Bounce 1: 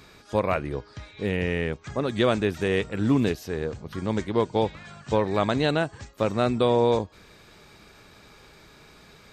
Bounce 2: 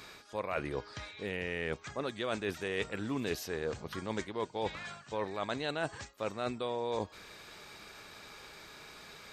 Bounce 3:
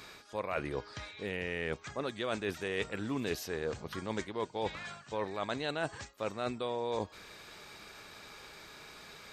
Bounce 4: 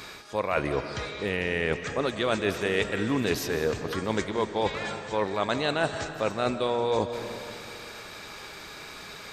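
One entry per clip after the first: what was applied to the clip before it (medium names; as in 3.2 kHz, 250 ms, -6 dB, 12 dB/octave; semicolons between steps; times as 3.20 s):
bass shelf 360 Hz -11 dB; reverse; compression 10:1, threshold -34 dBFS, peak gain reduction 14 dB; reverse; trim +2.5 dB
no audible change
reverberation RT60 2.4 s, pre-delay 115 ms, DRR 8.5 dB; trim +8.5 dB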